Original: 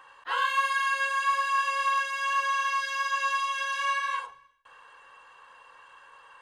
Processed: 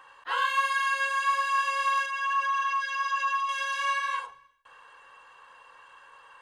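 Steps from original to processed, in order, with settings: 2.06–3.49 s: resonances exaggerated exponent 1.5

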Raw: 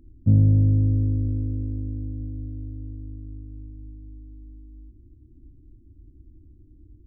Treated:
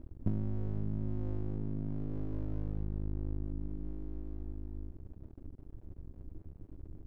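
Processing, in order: compression 8:1, threshold -34 dBFS, peak gain reduction 20.5 dB; half-wave rectifier; on a send: reverberation, pre-delay 3 ms, DRR 21 dB; on the sum: trim +5.5 dB

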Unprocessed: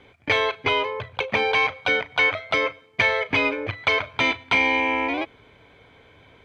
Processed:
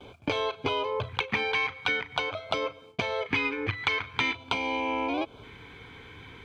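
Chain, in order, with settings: gate with hold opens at -44 dBFS; compression 6:1, threshold -31 dBFS, peak gain reduction 14 dB; LFO notch square 0.46 Hz 610–1900 Hz; trim +6.5 dB

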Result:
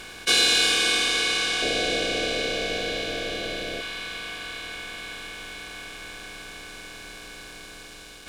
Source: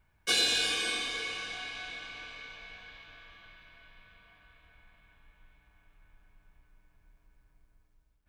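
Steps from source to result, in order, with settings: spectral levelling over time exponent 0.4; 1.62–3.81 s: resonant low shelf 760 Hz +7.5 dB, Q 3; trim +5 dB

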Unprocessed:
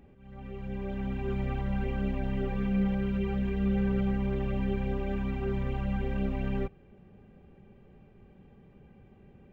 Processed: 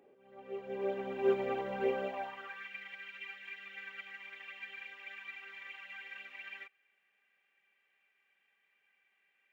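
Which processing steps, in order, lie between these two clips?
high-pass sweep 450 Hz -> 2 kHz, 1.92–2.69 s; upward expansion 1.5:1, over -48 dBFS; trim +4 dB

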